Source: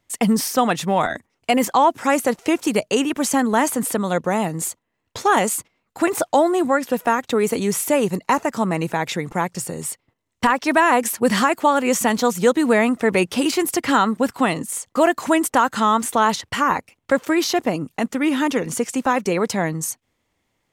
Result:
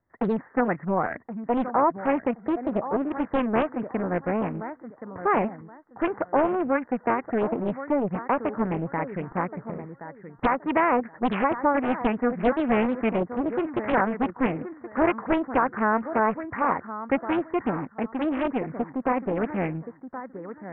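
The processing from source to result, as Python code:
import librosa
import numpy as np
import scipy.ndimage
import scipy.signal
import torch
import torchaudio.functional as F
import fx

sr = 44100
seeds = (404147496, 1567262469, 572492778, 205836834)

y = scipy.signal.sosfilt(scipy.signal.butter(16, 1900.0, 'lowpass', fs=sr, output='sos'), x)
y = fx.echo_feedback(y, sr, ms=1074, feedback_pct=23, wet_db=-11.5)
y = fx.doppler_dist(y, sr, depth_ms=0.98)
y = y * 10.0 ** (-6.0 / 20.0)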